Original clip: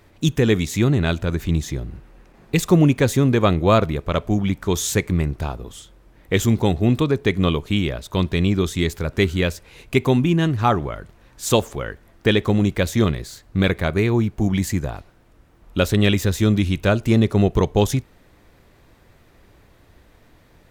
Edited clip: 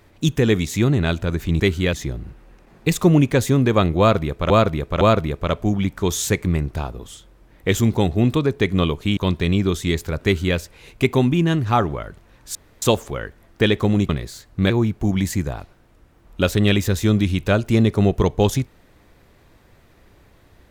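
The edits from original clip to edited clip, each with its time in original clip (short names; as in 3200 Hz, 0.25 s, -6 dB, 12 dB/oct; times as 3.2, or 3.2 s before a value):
3.66–4.17 loop, 3 plays
7.82–8.09 cut
9.16–9.49 copy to 1.6
11.47 insert room tone 0.27 s
12.74–13.06 cut
13.67–14.07 cut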